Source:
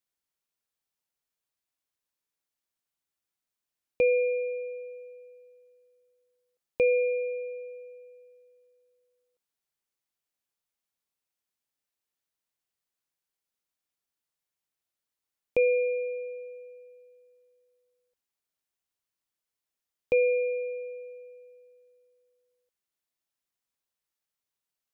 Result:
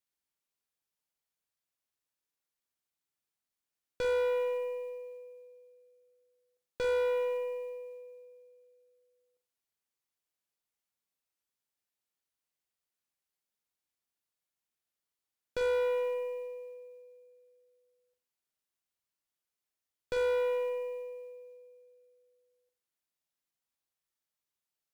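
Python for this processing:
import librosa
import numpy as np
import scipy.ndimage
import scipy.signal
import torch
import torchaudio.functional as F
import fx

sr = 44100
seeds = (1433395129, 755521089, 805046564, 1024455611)

y = fx.tube_stage(x, sr, drive_db=30.0, bias=0.6)
y = fx.quant_float(y, sr, bits=4)
y = fx.room_flutter(y, sr, wall_m=7.6, rt60_s=0.31)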